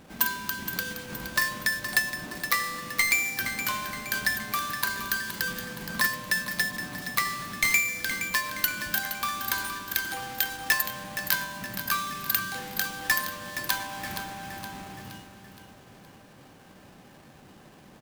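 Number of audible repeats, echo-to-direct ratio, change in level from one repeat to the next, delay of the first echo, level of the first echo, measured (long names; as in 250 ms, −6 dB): 5, −9.0 dB, −6.0 dB, 469 ms, −10.0 dB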